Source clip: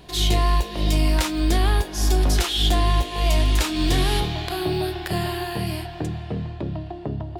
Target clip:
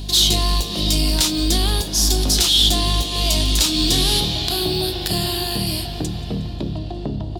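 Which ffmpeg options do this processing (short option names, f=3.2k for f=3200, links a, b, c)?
-filter_complex "[0:a]equalizer=f=230:w=1.7:g=6.5,aeval=exprs='val(0)+0.0282*(sin(2*PI*50*n/s)+sin(2*PI*2*50*n/s)/2+sin(2*PI*3*50*n/s)/3+sin(2*PI*4*50*n/s)/4+sin(2*PI*5*50*n/s)/5)':c=same,asplit=2[a][b];[b]acompressor=threshold=-29dB:ratio=6,volume=0dB[c];[a][c]amix=inputs=2:normalize=0,highshelf=f=2.8k:t=q:w=1.5:g=11.5,asoftclip=type=tanh:threshold=-3dB,asplit=6[d][e][f][g][h][i];[e]adelay=180,afreqshift=120,volume=-22dB[j];[f]adelay=360,afreqshift=240,volume=-26dB[k];[g]adelay=540,afreqshift=360,volume=-30dB[l];[h]adelay=720,afreqshift=480,volume=-34dB[m];[i]adelay=900,afreqshift=600,volume=-38.1dB[n];[d][j][k][l][m][n]amix=inputs=6:normalize=0,volume=-3dB"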